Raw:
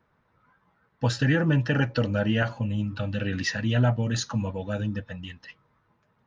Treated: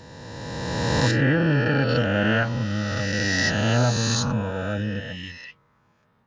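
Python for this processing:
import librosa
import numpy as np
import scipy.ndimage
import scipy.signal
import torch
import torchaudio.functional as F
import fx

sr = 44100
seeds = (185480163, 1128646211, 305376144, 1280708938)

y = fx.spec_swells(x, sr, rise_s=2.35)
y = fx.lowpass(y, sr, hz=2200.0, slope=6, at=(1.11, 1.89))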